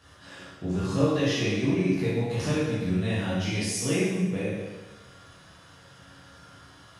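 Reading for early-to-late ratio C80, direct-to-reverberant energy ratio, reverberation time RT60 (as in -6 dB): 2.0 dB, -9.5 dB, 1.2 s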